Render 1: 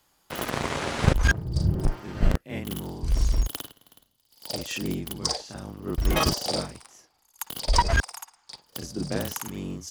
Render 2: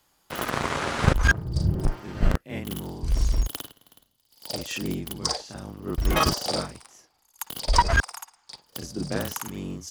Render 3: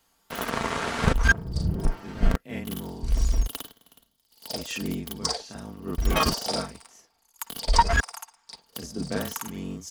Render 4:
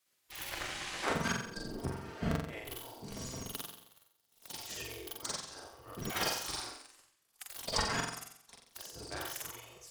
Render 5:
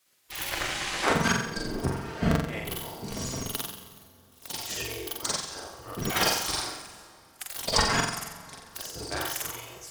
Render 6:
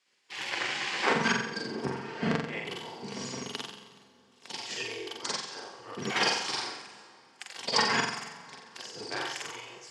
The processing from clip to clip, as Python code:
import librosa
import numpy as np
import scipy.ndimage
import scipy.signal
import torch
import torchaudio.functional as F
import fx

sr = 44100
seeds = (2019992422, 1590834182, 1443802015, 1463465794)

y1 = fx.dynamic_eq(x, sr, hz=1300.0, q=1.6, threshold_db=-41.0, ratio=4.0, max_db=5)
y2 = fx.wow_flutter(y1, sr, seeds[0], rate_hz=2.1, depth_cents=55.0)
y2 = y2 + 0.4 * np.pad(y2, (int(4.4 * sr / 1000.0), 0))[:len(y2)]
y2 = y2 * 10.0 ** (-1.5 / 20.0)
y3 = fx.room_flutter(y2, sr, wall_m=7.7, rt60_s=0.66)
y3 = fx.spec_gate(y3, sr, threshold_db=-10, keep='weak')
y3 = y3 * 10.0 ** (-7.0 / 20.0)
y4 = fx.rev_plate(y3, sr, seeds[1], rt60_s=3.1, hf_ratio=0.7, predelay_ms=0, drr_db=13.5)
y4 = y4 * 10.0 ** (9.0 / 20.0)
y5 = fx.cabinet(y4, sr, low_hz=160.0, low_slope=24, high_hz=6400.0, hz=(170.0, 300.0, 630.0, 1300.0, 3800.0, 6100.0), db=(-8, -7, -9, -6, -5, -6))
y5 = y5 * 10.0 ** (1.5 / 20.0)